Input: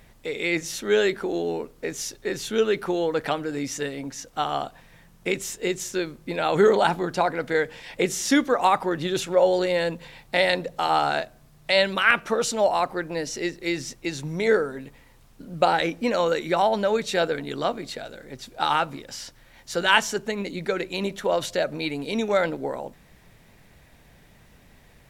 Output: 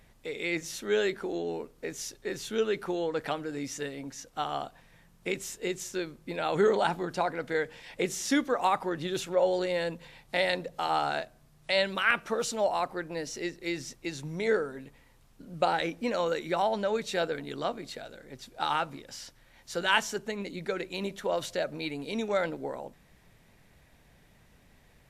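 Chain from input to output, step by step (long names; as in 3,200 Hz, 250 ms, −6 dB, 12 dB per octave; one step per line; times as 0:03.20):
level −6.5 dB
WMA 128 kbit/s 32,000 Hz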